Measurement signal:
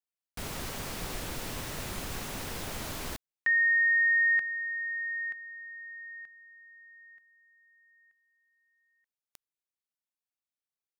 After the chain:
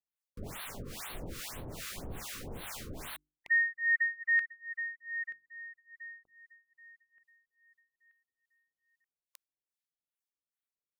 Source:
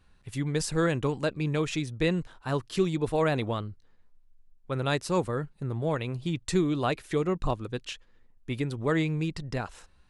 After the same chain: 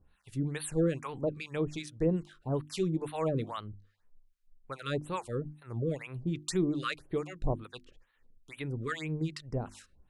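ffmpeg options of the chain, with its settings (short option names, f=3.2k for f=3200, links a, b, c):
-filter_complex "[0:a]acrossover=split=800[a][b];[a]aeval=exprs='val(0)*(1-1/2+1/2*cos(2*PI*2.4*n/s))':c=same[c];[b]aeval=exprs='val(0)*(1-1/2-1/2*cos(2*PI*2.4*n/s))':c=same[d];[c][d]amix=inputs=2:normalize=0,bandreject=f=50:t=h:w=6,bandreject=f=100:t=h:w=6,bandreject=f=150:t=h:w=6,bandreject=f=200:t=h:w=6,bandreject=f=250:t=h:w=6,bandreject=f=300:t=h:w=6,bandreject=f=350:t=h:w=6,afftfilt=real='re*(1-between(b*sr/1024,730*pow(6500/730,0.5+0.5*sin(2*PI*2*pts/sr))/1.41,730*pow(6500/730,0.5+0.5*sin(2*PI*2*pts/sr))*1.41))':imag='im*(1-between(b*sr/1024,730*pow(6500/730,0.5+0.5*sin(2*PI*2*pts/sr))/1.41,730*pow(6500/730,0.5+0.5*sin(2*PI*2*pts/sr))*1.41))':win_size=1024:overlap=0.75"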